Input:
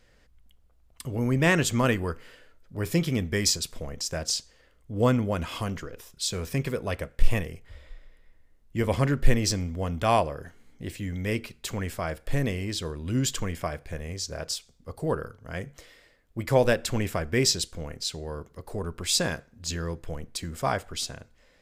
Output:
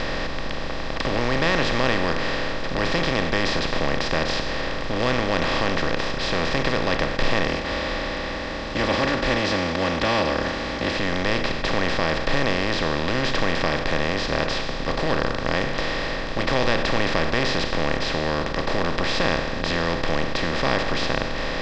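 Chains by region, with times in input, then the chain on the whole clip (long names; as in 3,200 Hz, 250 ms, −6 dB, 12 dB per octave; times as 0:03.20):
0:07.48–0:10.99: high-pass filter 75 Hz 24 dB per octave + comb filter 3.5 ms, depth 99%
whole clip: compressor on every frequency bin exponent 0.2; low-pass filter 3,600 Hz 24 dB per octave; high-shelf EQ 2,500 Hz +11.5 dB; level −8.5 dB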